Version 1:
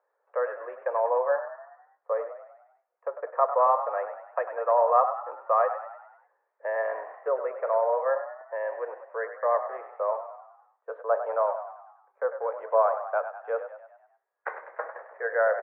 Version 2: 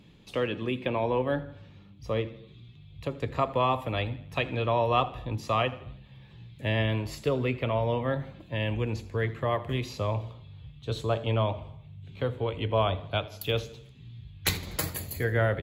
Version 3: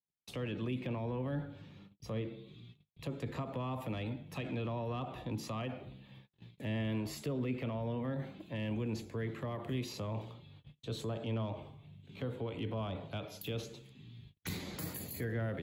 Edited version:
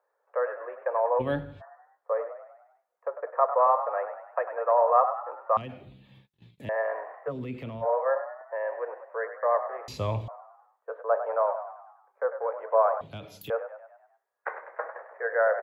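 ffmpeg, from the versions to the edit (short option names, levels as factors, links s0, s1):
-filter_complex "[1:a]asplit=2[s0][s1];[2:a]asplit=3[s2][s3][s4];[0:a]asplit=6[s5][s6][s7][s8][s9][s10];[s5]atrim=end=1.21[s11];[s0]atrim=start=1.19:end=1.62[s12];[s6]atrim=start=1.6:end=5.572[s13];[s2]atrim=start=5.568:end=6.692[s14];[s7]atrim=start=6.688:end=7.33[s15];[s3]atrim=start=7.27:end=7.86[s16];[s8]atrim=start=7.8:end=9.882[s17];[s1]atrim=start=9.878:end=10.282[s18];[s9]atrim=start=10.278:end=13.012[s19];[s4]atrim=start=13.008:end=13.502[s20];[s10]atrim=start=13.498[s21];[s11][s12]acrossfade=d=0.02:c1=tri:c2=tri[s22];[s22][s13]acrossfade=d=0.02:c1=tri:c2=tri[s23];[s23][s14]acrossfade=d=0.004:c1=hsin:c2=hsin[s24];[s24][s15]acrossfade=d=0.004:c1=hsin:c2=hsin[s25];[s25][s16]acrossfade=d=0.06:c1=tri:c2=tri[s26];[s26][s17]acrossfade=d=0.06:c1=tri:c2=tri[s27];[s27][s18]acrossfade=d=0.004:c1=hsin:c2=hsin[s28];[s28][s19]acrossfade=d=0.004:c1=hsin:c2=hsin[s29];[s29][s20]acrossfade=d=0.004:c1=hsin:c2=hsin[s30];[s30][s21]acrossfade=d=0.004:c1=hsin:c2=hsin"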